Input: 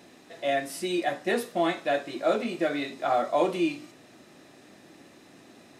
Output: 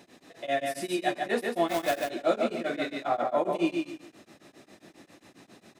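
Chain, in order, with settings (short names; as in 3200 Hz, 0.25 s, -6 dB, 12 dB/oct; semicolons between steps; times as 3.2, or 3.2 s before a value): 3.07–3.54 bell 11000 Hz -> 3300 Hz -11 dB 2.5 oct; feedback echo 0.146 s, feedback 26%, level -4 dB; 1.68–2.1 companded quantiser 4-bit; beating tremolo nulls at 7.4 Hz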